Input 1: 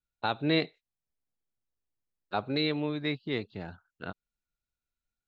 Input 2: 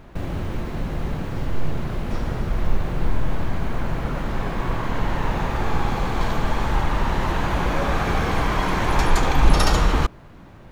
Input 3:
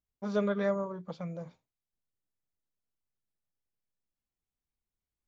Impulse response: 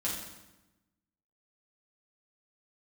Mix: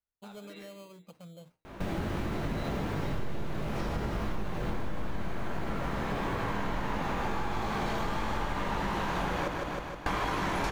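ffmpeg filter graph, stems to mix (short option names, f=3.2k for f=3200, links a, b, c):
-filter_complex "[0:a]highpass=560,alimiter=level_in=2.5dB:limit=-24dB:level=0:latency=1,volume=-2.5dB,volume=-13.5dB,asplit=3[a][b][c];[b]volume=-8.5dB[d];[c]volume=-16.5dB[e];[1:a]lowshelf=f=120:g=-9,flanger=delay=18.5:depth=5.8:speed=1.5,adelay=1650,volume=2.5dB,asplit=3[f][g][h];[f]atrim=end=9.48,asetpts=PTS-STARTPTS,afade=t=out:st=9.476:d=0.004:c=hsin[i];[g]atrim=start=9.48:end=10.06,asetpts=PTS-STARTPTS,volume=0[j];[h]atrim=start=10.06,asetpts=PTS-STARTPTS,afade=t=in:d=0.004:c=hsin[k];[i][j][k]concat=n=3:v=0:a=1,asplit=3[l][m][n];[m]volume=-8.5dB[o];[n]volume=-5dB[p];[2:a]acrusher=samples=12:mix=1:aa=0.000001,volume=-9dB[q];[a][q]amix=inputs=2:normalize=0,alimiter=level_in=15dB:limit=-24dB:level=0:latency=1:release=244,volume=-15dB,volume=0dB[r];[3:a]atrim=start_sample=2205[s];[d][o]amix=inputs=2:normalize=0[t];[t][s]afir=irnorm=-1:irlink=0[u];[e][p]amix=inputs=2:normalize=0,aecho=0:1:156|312|468|624|780|936|1092|1248:1|0.54|0.292|0.157|0.085|0.0459|0.0248|0.0134[v];[l][r][u][v]amix=inputs=4:normalize=0,acompressor=threshold=-29dB:ratio=5"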